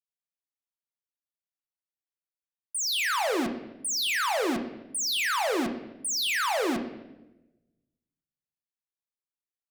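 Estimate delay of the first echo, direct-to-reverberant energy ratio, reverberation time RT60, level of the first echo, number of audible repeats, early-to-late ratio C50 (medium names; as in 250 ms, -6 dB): no echo, 5.5 dB, 1.0 s, no echo, no echo, 9.0 dB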